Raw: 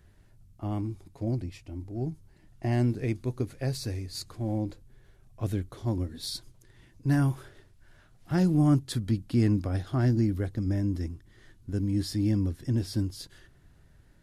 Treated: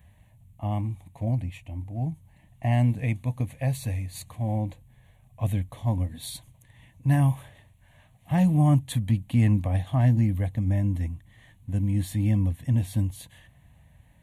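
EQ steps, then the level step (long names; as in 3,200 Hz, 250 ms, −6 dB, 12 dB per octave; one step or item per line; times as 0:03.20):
high-pass filter 58 Hz
phaser with its sweep stopped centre 1,400 Hz, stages 6
+6.5 dB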